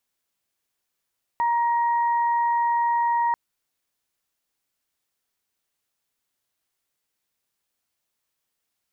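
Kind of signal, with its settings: steady additive tone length 1.94 s, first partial 942 Hz, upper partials -14 dB, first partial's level -19 dB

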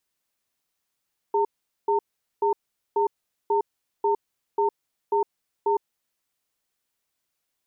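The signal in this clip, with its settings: cadence 409 Hz, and 908 Hz, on 0.11 s, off 0.43 s, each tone -21.5 dBFS 4.70 s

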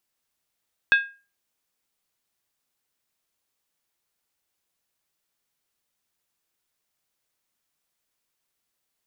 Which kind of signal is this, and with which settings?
skin hit, lowest mode 1620 Hz, decay 0.33 s, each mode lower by 7.5 dB, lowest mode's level -11 dB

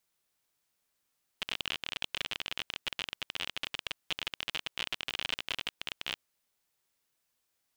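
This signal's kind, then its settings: random clicks 38/s -17 dBFS 4.77 s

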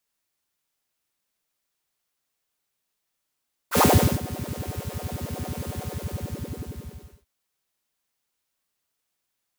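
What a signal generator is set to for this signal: synth patch with filter wobble E2, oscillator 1 square, oscillator 2 saw, interval +19 st, noise -3.5 dB, filter highpass, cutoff 140 Hz, Q 7.2, filter envelope 2 oct, attack 71 ms, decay 0.42 s, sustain -19.5 dB, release 1.43 s, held 2.11 s, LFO 11 Hz, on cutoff 1.5 oct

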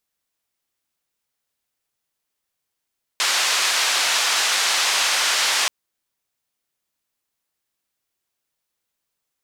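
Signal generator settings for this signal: noise band 820–5700 Hz, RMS -20 dBFS 2.48 s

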